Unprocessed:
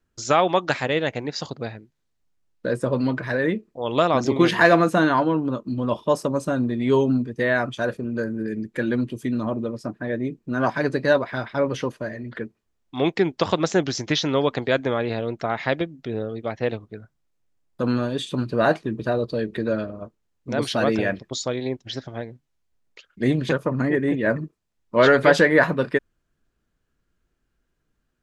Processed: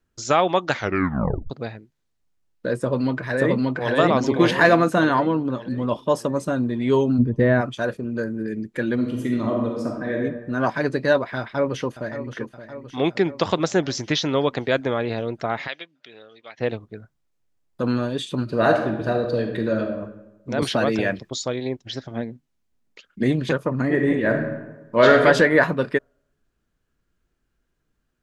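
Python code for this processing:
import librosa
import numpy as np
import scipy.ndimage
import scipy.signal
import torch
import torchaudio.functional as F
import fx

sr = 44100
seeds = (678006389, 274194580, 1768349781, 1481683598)

y = fx.echo_throw(x, sr, start_s=2.79, length_s=1.15, ms=580, feedback_pct=45, wet_db=0.0)
y = fx.tilt_eq(y, sr, slope=-4.0, at=(7.18, 7.6), fade=0.02)
y = fx.reverb_throw(y, sr, start_s=8.94, length_s=1.21, rt60_s=1.1, drr_db=-0.5)
y = fx.echo_throw(y, sr, start_s=11.39, length_s=0.94, ms=570, feedback_pct=65, wet_db=-11.5)
y = fx.bandpass_q(y, sr, hz=3200.0, q=1.1, at=(15.66, 16.57), fade=0.02)
y = fx.reverb_throw(y, sr, start_s=18.43, length_s=1.56, rt60_s=1.0, drr_db=3.5)
y = fx.band_squash(y, sr, depth_pct=70, at=(20.62, 21.3))
y = fx.peak_eq(y, sr, hz=230.0, db=9.0, octaves=0.77, at=(22.11, 23.23))
y = fx.reverb_throw(y, sr, start_s=23.84, length_s=1.4, rt60_s=1.1, drr_db=3.0)
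y = fx.edit(y, sr, fx.tape_stop(start_s=0.7, length_s=0.8), tone=tone)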